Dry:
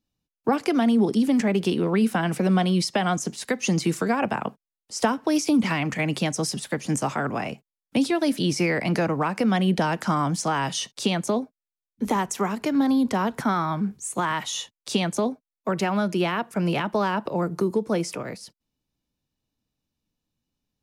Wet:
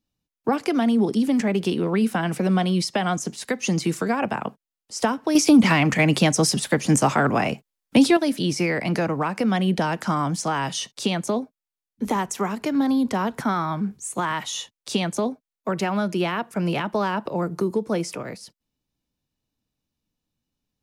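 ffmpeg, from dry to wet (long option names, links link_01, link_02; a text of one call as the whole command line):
ffmpeg -i in.wav -filter_complex "[0:a]asettb=1/sr,asplit=3[link_01][link_02][link_03];[link_01]atrim=end=5.354[link_04];[link_02]atrim=start=5.35:end=8.17,asetpts=PTS-STARTPTS,afade=type=in:duration=0.004:curve=qsin,afade=type=out:start_time=2.816:duration=0.004:curve=qsin,acontrast=80[link_05];[link_03]atrim=start=8.166[link_06];[link_04][link_05]acrossfade=duration=0.004:curve1=hsin:curve2=qsin[link_07];[link_07][link_06]acrossfade=duration=0.004:curve1=qsin:curve2=hsin" out.wav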